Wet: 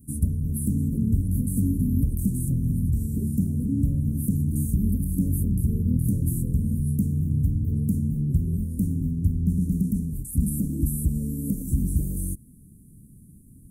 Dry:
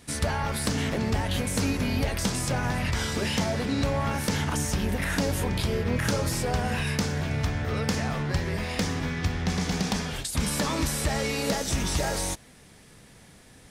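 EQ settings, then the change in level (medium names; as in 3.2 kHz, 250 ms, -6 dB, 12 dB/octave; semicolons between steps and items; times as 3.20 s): inverse Chebyshev band-stop 770–4400 Hz, stop band 60 dB; +5.5 dB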